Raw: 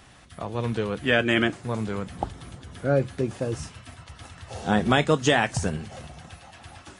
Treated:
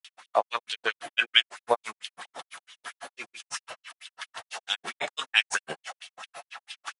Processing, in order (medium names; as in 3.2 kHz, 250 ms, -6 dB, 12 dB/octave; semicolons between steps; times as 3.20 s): granulator 97 ms, grains 6 per s, pitch spread up and down by 0 st; LFO high-pass sine 4.5 Hz 620–3200 Hz; trim +9 dB